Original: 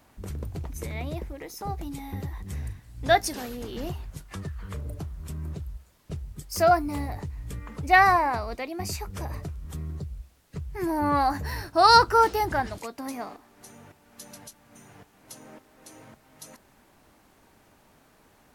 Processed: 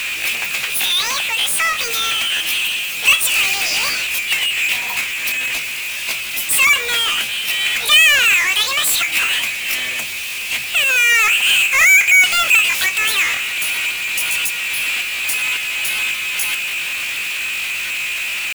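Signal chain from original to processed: compression 2:1, threshold -29 dBFS, peak gain reduction 10.5 dB; pitch shift +8.5 st; resonant high-pass 2.5 kHz, resonance Q 7.9; power-law waveshaper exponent 0.35; trim +3.5 dB

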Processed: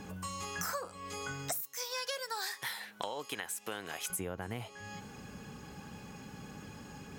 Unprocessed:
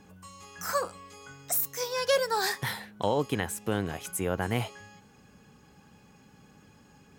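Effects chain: 1.61–4.10 s: high-pass 1.5 kHz 6 dB/octave; compression 20:1, threshold -43 dBFS, peak gain reduction 21.5 dB; trim +8.5 dB

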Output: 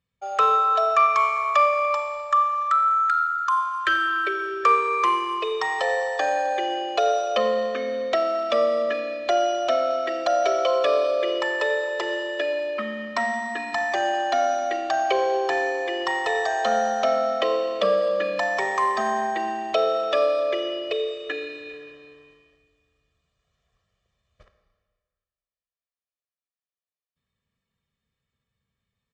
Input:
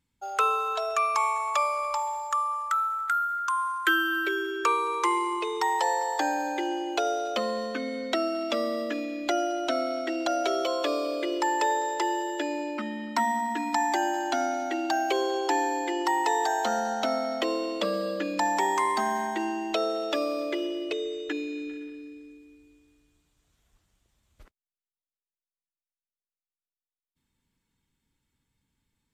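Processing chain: waveshaping leveller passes 1; high-pass 130 Hz 6 dB/octave; distance through air 130 m; comb 1.7 ms, depth 81%; Schroeder reverb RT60 1.6 s, combs from 28 ms, DRR 8 dB

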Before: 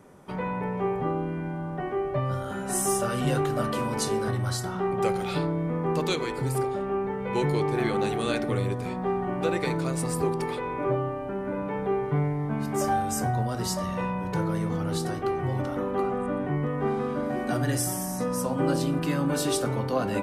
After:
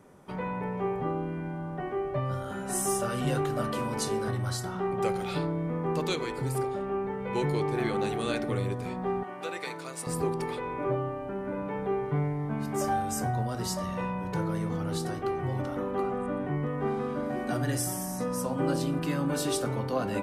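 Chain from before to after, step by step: 9.23–10.07 s: high-pass 1 kHz 6 dB/octave; trim -3 dB

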